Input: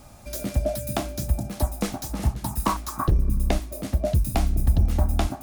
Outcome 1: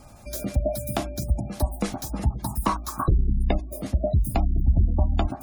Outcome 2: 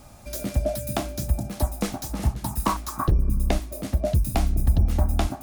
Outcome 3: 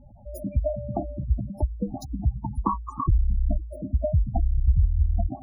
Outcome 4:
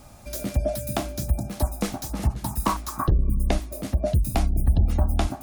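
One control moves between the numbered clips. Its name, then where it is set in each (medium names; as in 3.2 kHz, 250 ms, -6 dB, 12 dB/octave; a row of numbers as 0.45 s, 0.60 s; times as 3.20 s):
spectral gate, under each frame's peak: -30 dB, -60 dB, -10 dB, -45 dB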